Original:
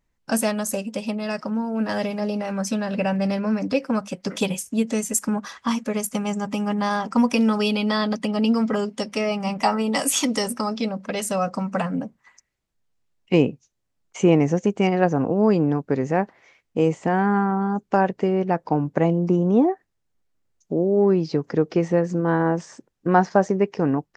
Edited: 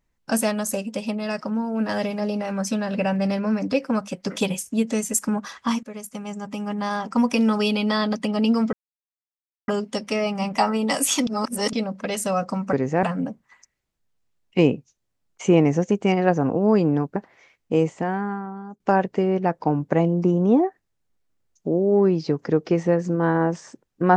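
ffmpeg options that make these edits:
-filter_complex "[0:a]asplit=9[a][b][c][d][e][f][g][h][i];[a]atrim=end=5.83,asetpts=PTS-STARTPTS,afade=t=out:st=5.826:d=0.004:c=hsin:silence=0.237137[j];[b]atrim=start=5.83:end=8.73,asetpts=PTS-STARTPTS,afade=t=in:d=1.7:silence=0.237137,afade=t=out:st=2.896:d=0.004:c=hsin,apad=pad_dur=0.95[k];[c]atrim=start=8.73:end=10.322,asetpts=PTS-STARTPTS,afade=t=in:d=0.004:c=hsin[l];[d]atrim=start=10.318:end=10.782,asetpts=PTS-STARTPTS,areverse[m];[e]atrim=start=10.778:end=11.782[n];[f]atrim=start=15.908:end=16.212[o];[g]atrim=start=11.778:end=15.912[p];[h]atrim=start=16.208:end=17.85,asetpts=PTS-STARTPTS,afade=t=out:st=0.642:d=1:c=qua:silence=0.199526[q];[i]atrim=start=17.85,asetpts=PTS-STARTPTS,afade=t=in:d=0.004:c=hsin:silence=0.199526[r];[j][k][l]concat=n=3:v=0:a=1[s];[s][m]acrossfade=d=0.004:c1=hsin:c2=hsin[t];[t][n]acrossfade=d=0.004:c1=hsin:c2=hsin[u];[u][o]acrossfade=d=0.004:c1=hsin:c2=hsin[v];[v][p]acrossfade=d=0.004:c1=hsin:c2=hsin[w];[q][r]concat=n=2:v=0:a=1[x];[w][x]acrossfade=d=0.004:c1=hsin:c2=hsin"

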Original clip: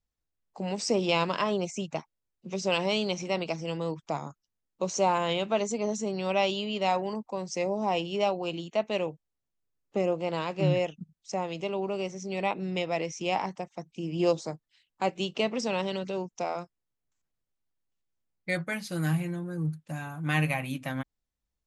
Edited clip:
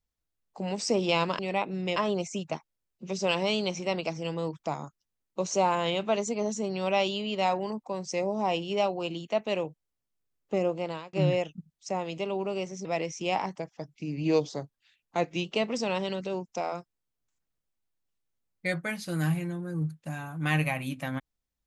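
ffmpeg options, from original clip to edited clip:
-filter_complex "[0:a]asplit=7[a][b][c][d][e][f][g];[a]atrim=end=1.392[h];[b]atrim=start=12.278:end=12.852[i];[c]atrim=start=1.388:end=10.56,asetpts=PTS-STARTPTS,afade=t=out:st=8.682:d=0.49:c=qsin[j];[d]atrim=start=10.56:end=12.282,asetpts=PTS-STARTPTS,afade=t=in:d=0.004:c=hsin[k];[e]atrim=start=12.848:end=13.594[l];[f]atrim=start=13.59:end=15.28,asetpts=PTS-STARTPTS,asetrate=40131,aresample=44100[m];[g]atrim=start=15.276[n];[h][i]acrossfade=d=0.004:c1=hsin:c2=hsin[o];[j][k]concat=n=2:v=0:a=1[p];[o][p]acrossfade=d=0.004:c1=hsin:c2=hsin[q];[q][l]acrossfade=d=0.004:c1=hsin:c2=hsin[r];[r][m]acrossfade=d=0.004:c1=hsin:c2=hsin[s];[s][n]acrossfade=d=0.004:c1=hsin:c2=hsin"

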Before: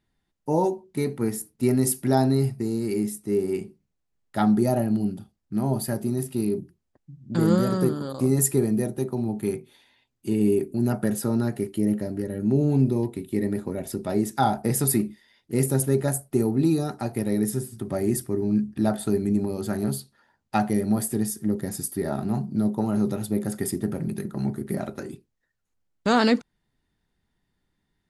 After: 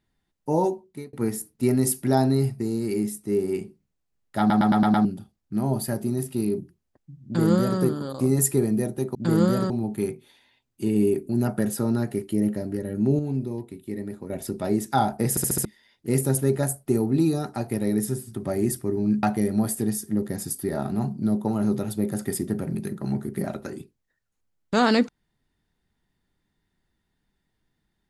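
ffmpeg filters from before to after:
-filter_complex "[0:a]asplit=18[a][b][c][d][e][f][g][h][i][j][k][l][m][n][o][p][q][r];[a]atrim=end=1.13,asetpts=PTS-STARTPTS,afade=t=out:st=0.7:d=0.43[s];[b]atrim=start=1.13:end=4.502,asetpts=PTS-STARTPTS,afade=t=in:d=0.004:c=hsin[t];[c]atrim=start=4.388:end=4.502[u];[d]atrim=start=4.388:end=4.502[v];[e]atrim=start=4.388:end=4.502[w];[f]atrim=start=4.388:end=4.502[x];[g]atrim=start=4.388:end=4.502[y];[h]atrim=start=5.048:end=9.152[z];[i]atrim=start=7.248:end=7.802[aa];[j]atrim=start=9.148:end=12.642[ab];[k]atrim=start=12.638:end=13.752,asetpts=PTS-STARTPTS,volume=-7dB[ac];[l]atrim=start=13.748:end=14.822[ad];[m]atrim=start=14.748:end=14.822[ae];[n]atrim=start=14.748:end=14.822[af];[o]atrim=start=14.748:end=14.822[ag];[p]atrim=start=14.748:end=14.822[ah];[q]atrim=start=15.098:end=18.682[ai];[r]atrim=start=20.558[aj];[s][t]concat=n=2:v=0:a=1[ak];[ak][u]acrossfade=d=0.004:c1=hsin:c2=hsin[al];[al][v]acrossfade=d=0.004:c1=hsin:c2=hsin[am];[am][w]acrossfade=d=0.004:c1=hsin:c2=hsin[an];[an][x]acrossfade=d=0.004:c1=hsin:c2=hsin[ao];[ao][y]acrossfade=d=0.004:c1=hsin:c2=hsin[ap];[ap][z]acrossfade=d=0.004:c1=hsin:c2=hsin[aq];[aq][aa]acrossfade=d=0.004:c1=hsin:c2=hsin[ar];[ar][ab]acrossfade=d=0.004:c1=hsin:c2=hsin[as];[as][ac]acrossfade=d=0.004:c1=hsin:c2=hsin[at];[at][ad]acrossfade=d=0.004:c1=hsin:c2=hsin[au];[au][ae]acrossfade=d=0.004:c1=hsin:c2=hsin[av];[av][af]acrossfade=d=0.004:c1=hsin:c2=hsin[aw];[aw][ag]acrossfade=d=0.004:c1=hsin:c2=hsin[ax];[ax][ah]acrossfade=d=0.004:c1=hsin:c2=hsin[ay];[ay][ai]acrossfade=d=0.004:c1=hsin:c2=hsin[az];[az][aj]acrossfade=d=0.004:c1=hsin:c2=hsin"

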